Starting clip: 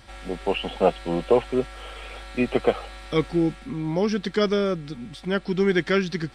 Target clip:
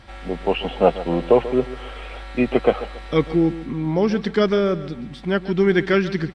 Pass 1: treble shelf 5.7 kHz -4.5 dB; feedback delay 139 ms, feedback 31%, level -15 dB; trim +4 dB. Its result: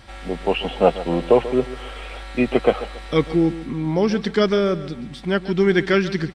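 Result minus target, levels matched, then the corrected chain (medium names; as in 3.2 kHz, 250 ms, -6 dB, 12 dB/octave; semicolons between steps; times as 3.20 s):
8 kHz band +5.0 dB
treble shelf 5.7 kHz -14 dB; feedback delay 139 ms, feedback 31%, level -15 dB; trim +4 dB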